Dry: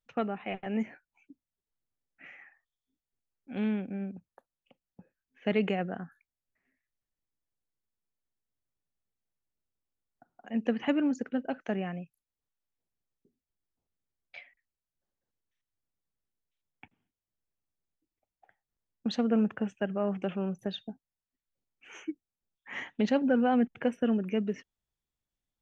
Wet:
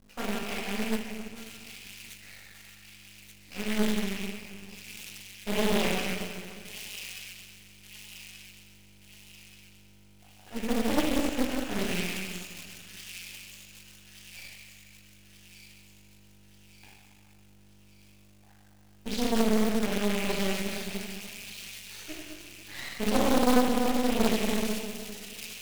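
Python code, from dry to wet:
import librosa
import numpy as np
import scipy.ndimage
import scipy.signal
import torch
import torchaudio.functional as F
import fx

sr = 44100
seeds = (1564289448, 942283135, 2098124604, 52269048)

p1 = fx.rattle_buzz(x, sr, strikes_db=-43.0, level_db=-25.0)
p2 = fx.low_shelf(p1, sr, hz=62.0, db=7.0)
p3 = fx.env_flanger(p2, sr, rest_ms=2.6, full_db=-23.5)
p4 = fx.dmg_buzz(p3, sr, base_hz=50.0, harmonics=4, level_db=-58.0, tilt_db=-2, odd_only=False)
p5 = fx.rev_plate(p4, sr, seeds[0], rt60_s=2.1, hf_ratio=0.9, predelay_ms=0, drr_db=-9.5)
p6 = np.maximum(p5, 0.0)
p7 = fx.quant_companded(p6, sr, bits=4)
p8 = p6 + F.gain(torch.from_numpy(p7), -3.0).numpy()
p9 = fx.high_shelf(p8, sr, hz=3800.0, db=11.5)
p10 = p9 + fx.echo_wet_highpass(p9, sr, ms=1181, feedback_pct=50, hz=3000.0, wet_db=-4.5, dry=0)
p11 = fx.doppler_dist(p10, sr, depth_ms=0.86)
y = F.gain(torch.from_numpy(p11), -8.0).numpy()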